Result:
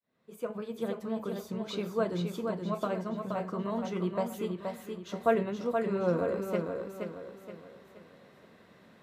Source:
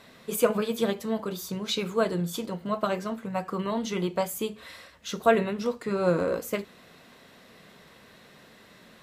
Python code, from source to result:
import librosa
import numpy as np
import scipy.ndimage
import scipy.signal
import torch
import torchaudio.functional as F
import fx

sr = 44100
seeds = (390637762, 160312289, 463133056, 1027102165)

y = fx.fade_in_head(x, sr, length_s=1.24)
y = scipy.signal.sosfilt(scipy.signal.butter(2, 67.0, 'highpass', fs=sr, output='sos'), y)
y = fx.high_shelf(y, sr, hz=2200.0, db=-11.5)
y = fx.echo_feedback(y, sr, ms=474, feedback_pct=40, wet_db=-5)
y = F.gain(torch.from_numpy(y), -4.0).numpy()